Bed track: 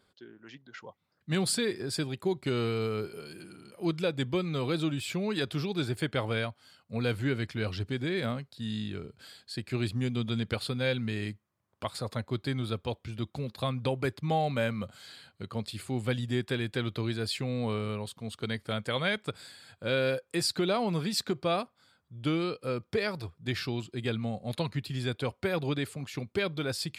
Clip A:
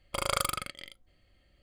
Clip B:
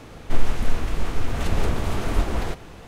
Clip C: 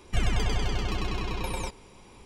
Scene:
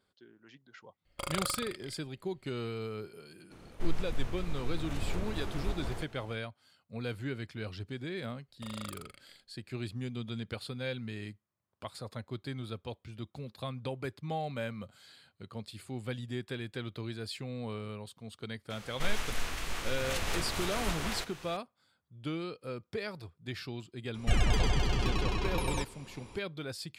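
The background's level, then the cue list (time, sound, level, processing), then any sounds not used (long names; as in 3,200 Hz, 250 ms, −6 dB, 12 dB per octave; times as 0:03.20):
bed track −7.5 dB
0:01.05: mix in A −5.5 dB
0:03.50: mix in B −13 dB, fades 0.02 s
0:08.48: mix in A −15.5 dB
0:18.70: mix in B −7 dB + tilt shelving filter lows −8.5 dB, about 920 Hz
0:24.14: mix in C −1 dB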